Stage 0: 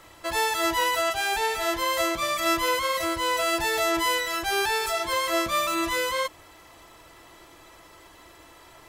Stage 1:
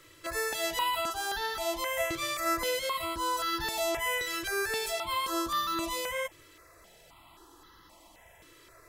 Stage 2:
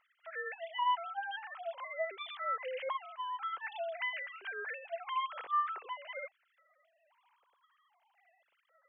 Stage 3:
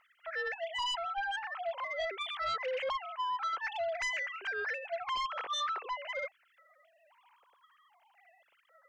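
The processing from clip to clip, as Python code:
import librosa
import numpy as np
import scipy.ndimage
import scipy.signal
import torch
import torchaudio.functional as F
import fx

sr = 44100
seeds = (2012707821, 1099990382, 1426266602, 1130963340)

y1 = fx.phaser_held(x, sr, hz=3.8, low_hz=210.0, high_hz=2400.0)
y1 = y1 * librosa.db_to_amplitude(-3.0)
y2 = fx.sine_speech(y1, sr)
y2 = y2 * librosa.db_to_amplitude(-6.5)
y3 = fx.fold_sine(y2, sr, drive_db=11, ceiling_db=-22.0)
y3 = y3 * librosa.db_to_amplitude(-8.5)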